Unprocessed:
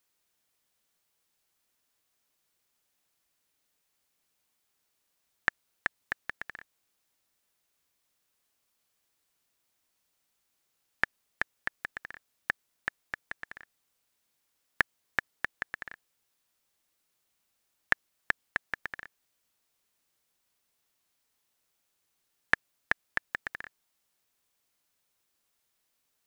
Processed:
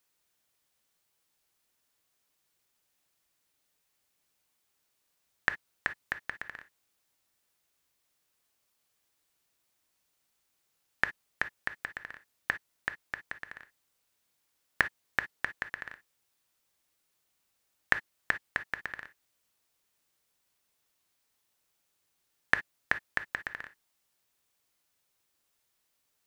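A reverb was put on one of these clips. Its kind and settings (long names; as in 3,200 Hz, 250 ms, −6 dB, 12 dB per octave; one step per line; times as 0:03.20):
reverb whose tail is shaped and stops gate 80 ms flat, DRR 10.5 dB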